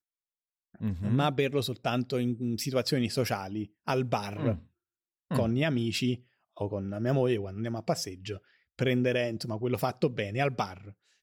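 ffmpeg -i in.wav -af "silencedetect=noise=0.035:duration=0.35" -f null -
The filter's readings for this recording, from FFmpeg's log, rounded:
silence_start: 0.00
silence_end: 0.83 | silence_duration: 0.83
silence_start: 4.55
silence_end: 5.31 | silence_duration: 0.76
silence_start: 6.15
silence_end: 6.61 | silence_duration: 0.46
silence_start: 8.32
silence_end: 8.79 | silence_duration: 0.47
silence_start: 10.65
silence_end: 11.22 | silence_duration: 0.57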